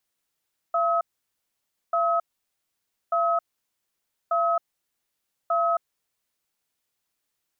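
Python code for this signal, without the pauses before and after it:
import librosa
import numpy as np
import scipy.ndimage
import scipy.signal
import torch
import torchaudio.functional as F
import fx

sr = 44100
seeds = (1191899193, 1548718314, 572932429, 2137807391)

y = fx.cadence(sr, length_s=5.42, low_hz=679.0, high_hz=1280.0, on_s=0.27, off_s=0.92, level_db=-22.5)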